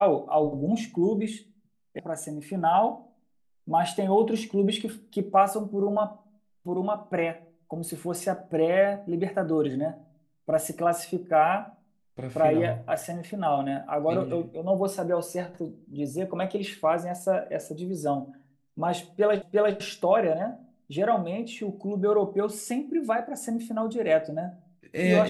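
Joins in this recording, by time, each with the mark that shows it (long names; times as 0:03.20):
0:01.99: cut off before it has died away
0:19.42: the same again, the last 0.35 s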